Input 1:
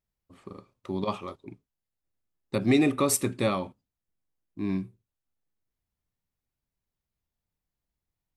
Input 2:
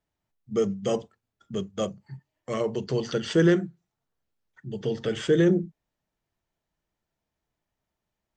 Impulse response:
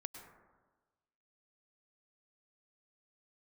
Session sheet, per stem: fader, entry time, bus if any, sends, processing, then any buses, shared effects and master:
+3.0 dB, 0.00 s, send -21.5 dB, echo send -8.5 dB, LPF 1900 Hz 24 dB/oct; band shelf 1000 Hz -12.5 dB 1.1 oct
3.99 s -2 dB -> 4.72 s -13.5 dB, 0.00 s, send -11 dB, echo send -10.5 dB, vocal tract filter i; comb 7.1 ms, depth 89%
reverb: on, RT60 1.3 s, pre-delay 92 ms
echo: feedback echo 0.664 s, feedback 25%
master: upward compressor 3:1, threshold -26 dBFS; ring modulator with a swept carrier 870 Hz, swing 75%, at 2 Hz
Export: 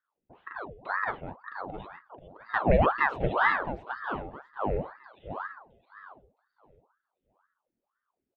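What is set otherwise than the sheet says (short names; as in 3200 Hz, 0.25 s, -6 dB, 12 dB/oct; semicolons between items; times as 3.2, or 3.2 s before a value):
stem 1: send off; master: missing upward compressor 3:1, threshold -26 dBFS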